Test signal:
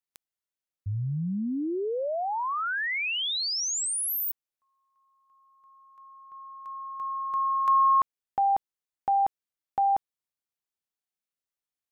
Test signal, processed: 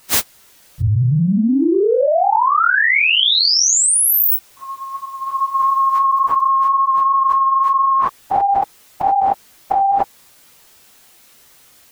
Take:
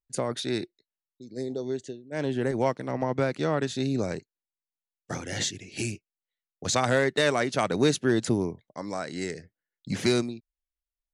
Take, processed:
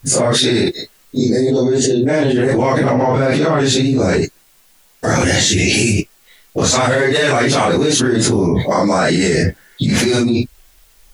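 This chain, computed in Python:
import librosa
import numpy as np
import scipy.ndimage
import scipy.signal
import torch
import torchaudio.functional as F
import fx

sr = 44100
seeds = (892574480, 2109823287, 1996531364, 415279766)

y = fx.phase_scramble(x, sr, seeds[0], window_ms=100)
y = fx.env_flatten(y, sr, amount_pct=100)
y = y * 10.0 ** (3.5 / 20.0)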